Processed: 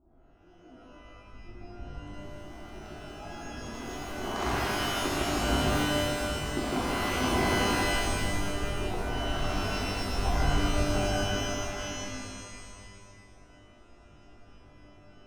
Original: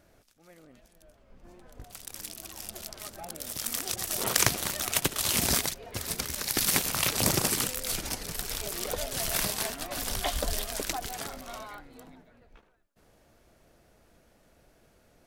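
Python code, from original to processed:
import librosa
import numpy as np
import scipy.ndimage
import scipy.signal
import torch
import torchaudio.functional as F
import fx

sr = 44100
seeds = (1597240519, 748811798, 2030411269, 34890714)

p1 = fx.wiener(x, sr, points=25)
p2 = scipy.signal.sosfilt(scipy.signal.butter(2, 1900.0, 'lowpass', fs=sr, output='sos'), p1)
p3 = fx.low_shelf(p2, sr, hz=390.0, db=5.0)
p4 = fx.fixed_phaser(p3, sr, hz=540.0, stages=6)
p5 = p4 + fx.echo_single(p4, sr, ms=155, db=-3.5, dry=0)
p6 = fx.rev_shimmer(p5, sr, seeds[0], rt60_s=1.8, semitones=12, shimmer_db=-2, drr_db=-7.0)
y = p6 * 10.0 ** (-5.0 / 20.0)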